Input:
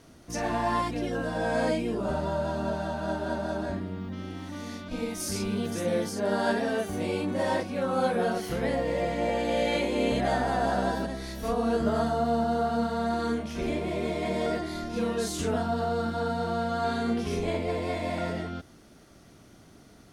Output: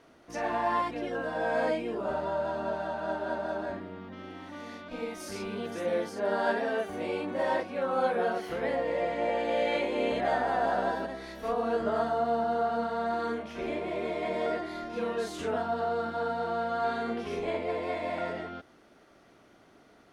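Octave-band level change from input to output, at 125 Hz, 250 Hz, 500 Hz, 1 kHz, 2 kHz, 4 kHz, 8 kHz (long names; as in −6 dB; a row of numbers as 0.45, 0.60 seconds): −12.0 dB, −7.0 dB, −1.0 dB, −0.5 dB, −0.5 dB, −5.5 dB, below −10 dB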